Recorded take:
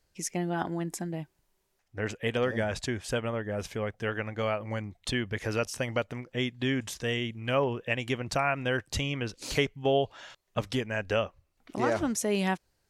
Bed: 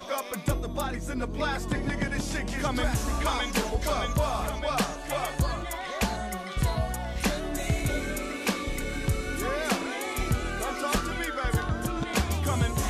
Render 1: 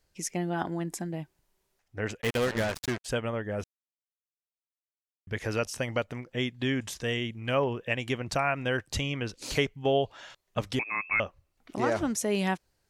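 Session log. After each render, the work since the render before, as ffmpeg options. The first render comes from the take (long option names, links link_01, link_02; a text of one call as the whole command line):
ffmpeg -i in.wav -filter_complex "[0:a]asplit=3[link_01][link_02][link_03];[link_01]afade=type=out:start_time=2.2:duration=0.02[link_04];[link_02]acrusher=bits=4:mix=0:aa=0.5,afade=type=in:start_time=2.2:duration=0.02,afade=type=out:start_time=3.04:duration=0.02[link_05];[link_03]afade=type=in:start_time=3.04:duration=0.02[link_06];[link_04][link_05][link_06]amix=inputs=3:normalize=0,asettb=1/sr,asplit=3[link_07][link_08][link_09];[link_07]atrim=end=10.794[link_10];[link_08]atrim=start=10.79:end=11.2,asetpts=PTS-STARTPTS,afade=type=in:duration=0.004:curve=qsin,afade=type=out:start_time=0.406:duration=0.004:curve=qsin,lowpass=frequency=2300:width_type=q:width=0.5098,lowpass=frequency=2300:width_type=q:width=0.6013,lowpass=frequency=2300:width_type=q:width=0.9,lowpass=frequency=2300:width_type=q:width=2.563,afreqshift=-2700[link_11];[link_09]atrim=start=11.196[link_12];[link_10][link_11]acrossfade=duration=0.004:curve1=hsin:curve2=qsin[link_13];[link_13][link_12]acrossfade=duration=0.004:curve1=qsin:curve2=hsin,asplit=3[link_14][link_15][link_16];[link_14]atrim=end=3.64,asetpts=PTS-STARTPTS,afade=type=out:start_time=3.636:duration=0.004:curve=hsin[link_17];[link_15]atrim=start=3.64:end=5.27,asetpts=PTS-STARTPTS,volume=0[link_18];[link_16]atrim=start=5.27,asetpts=PTS-STARTPTS,afade=type=in:duration=0.004:curve=hsin[link_19];[link_17][link_18][link_19]concat=n=3:v=0:a=1" out.wav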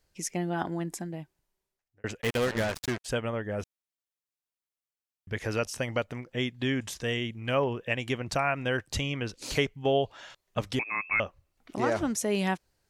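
ffmpeg -i in.wav -filter_complex "[0:a]asplit=2[link_01][link_02];[link_01]atrim=end=2.04,asetpts=PTS-STARTPTS,afade=type=out:start_time=0.81:duration=1.23[link_03];[link_02]atrim=start=2.04,asetpts=PTS-STARTPTS,afade=type=in:duration=0.004:curve=hsin[link_04];[link_03][link_04]concat=n=2:v=0:a=1" out.wav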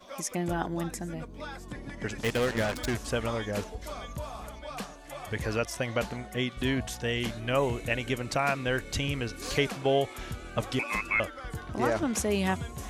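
ffmpeg -i in.wav -i bed.wav -filter_complex "[1:a]volume=-11.5dB[link_01];[0:a][link_01]amix=inputs=2:normalize=0" out.wav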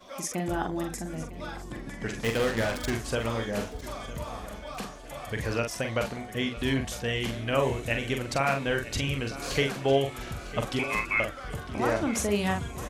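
ffmpeg -i in.wav -filter_complex "[0:a]asplit=2[link_01][link_02];[link_02]adelay=44,volume=-5.5dB[link_03];[link_01][link_03]amix=inputs=2:normalize=0,aecho=1:1:954|1908|2862|3816:0.158|0.065|0.0266|0.0109" out.wav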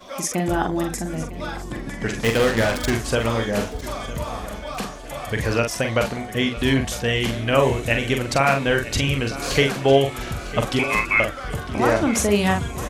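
ffmpeg -i in.wav -af "volume=8dB" out.wav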